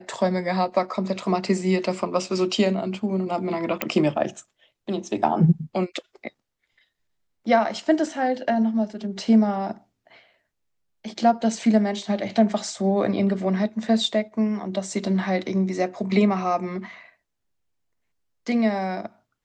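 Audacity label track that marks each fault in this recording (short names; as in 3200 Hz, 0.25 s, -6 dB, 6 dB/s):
3.820000	3.820000	pop -8 dBFS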